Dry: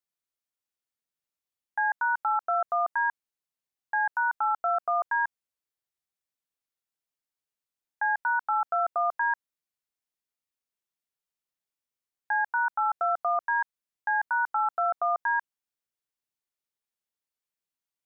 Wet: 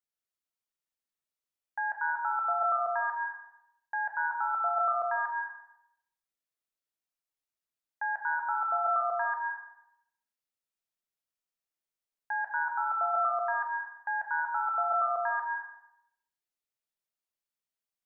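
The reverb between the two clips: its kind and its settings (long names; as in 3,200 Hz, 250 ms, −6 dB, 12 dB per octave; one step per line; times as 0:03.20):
comb and all-pass reverb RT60 0.79 s, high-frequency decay 0.95×, pre-delay 100 ms, DRR −0.5 dB
level −6 dB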